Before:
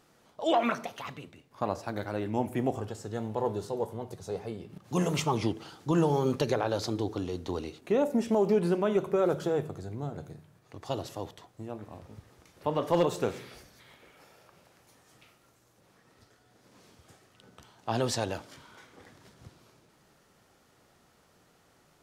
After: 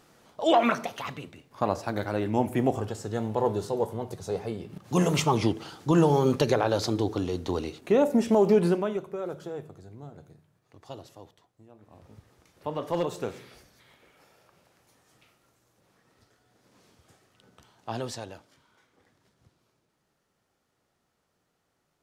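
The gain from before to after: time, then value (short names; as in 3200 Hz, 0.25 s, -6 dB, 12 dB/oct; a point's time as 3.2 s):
8.67 s +4.5 dB
9.07 s -8 dB
10.88 s -8 dB
11.74 s -14.5 dB
12.07 s -3 dB
17.9 s -3 dB
18.49 s -12 dB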